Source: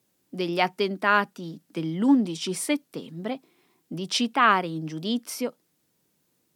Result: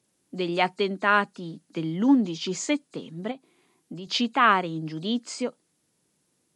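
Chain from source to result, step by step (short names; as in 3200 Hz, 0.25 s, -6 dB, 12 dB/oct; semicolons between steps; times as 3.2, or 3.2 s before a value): nonlinear frequency compression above 3800 Hz 1.5:1; 3.31–4.07 compressor 6:1, threshold -35 dBFS, peak gain reduction 8 dB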